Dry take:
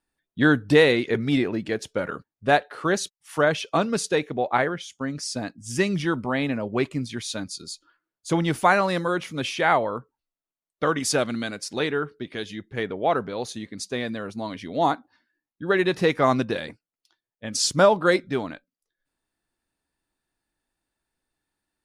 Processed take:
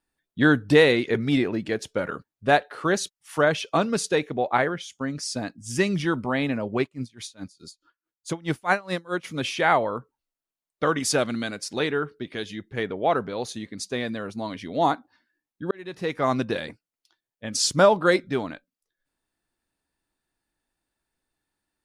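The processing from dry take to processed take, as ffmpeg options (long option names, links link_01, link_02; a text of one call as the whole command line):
ffmpeg -i in.wav -filter_complex "[0:a]asplit=3[link_01][link_02][link_03];[link_01]afade=type=out:start_time=6.77:duration=0.02[link_04];[link_02]aeval=exprs='val(0)*pow(10,-26*(0.5-0.5*cos(2*PI*4.7*n/s))/20)':channel_layout=same,afade=type=in:start_time=6.77:duration=0.02,afade=type=out:start_time=9.23:duration=0.02[link_05];[link_03]afade=type=in:start_time=9.23:duration=0.02[link_06];[link_04][link_05][link_06]amix=inputs=3:normalize=0,asplit=2[link_07][link_08];[link_07]atrim=end=15.71,asetpts=PTS-STARTPTS,afade=type=out:start_time=15.706:duration=0.004:curve=hsin[link_09];[link_08]atrim=start=15.71,asetpts=PTS-STARTPTS,afade=type=in:duration=0.83[link_10];[link_09][link_10]concat=n=2:v=0:a=1" out.wav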